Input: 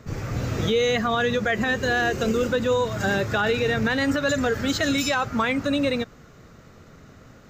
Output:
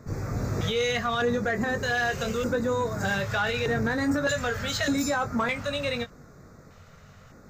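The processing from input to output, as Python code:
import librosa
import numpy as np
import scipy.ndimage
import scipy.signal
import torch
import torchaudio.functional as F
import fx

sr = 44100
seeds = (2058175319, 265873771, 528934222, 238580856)

y = fx.doubler(x, sr, ms=21.0, db=-7.5)
y = fx.filter_lfo_notch(y, sr, shape='square', hz=0.82, low_hz=310.0, high_hz=3000.0, q=0.83)
y = 10.0 ** (-15.5 / 20.0) * np.tanh(y / 10.0 ** (-15.5 / 20.0))
y = F.gain(torch.from_numpy(y), -1.5).numpy()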